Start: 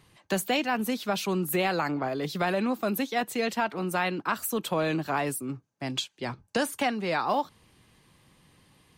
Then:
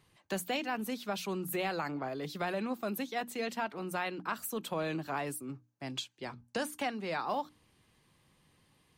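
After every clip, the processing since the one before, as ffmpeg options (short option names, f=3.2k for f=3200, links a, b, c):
-af "bandreject=f=60:t=h:w=6,bandreject=f=120:t=h:w=6,bandreject=f=180:t=h:w=6,bandreject=f=240:t=h:w=6,bandreject=f=300:t=h:w=6,volume=-7.5dB"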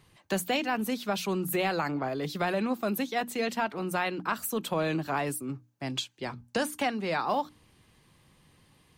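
-af "lowshelf=f=140:g=3.5,volume=5.5dB"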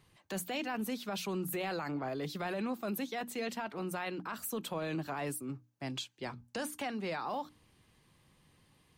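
-af "alimiter=limit=-23.5dB:level=0:latency=1:release=12,volume=-5dB"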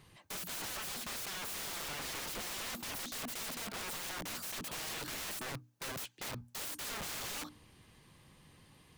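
-af "aeval=exprs='(mod(126*val(0)+1,2)-1)/126':c=same,volume=5.5dB"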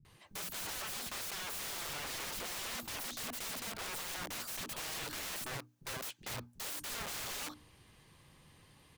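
-filter_complex "[0:a]acrossover=split=230[a][b];[b]adelay=50[c];[a][c]amix=inputs=2:normalize=0"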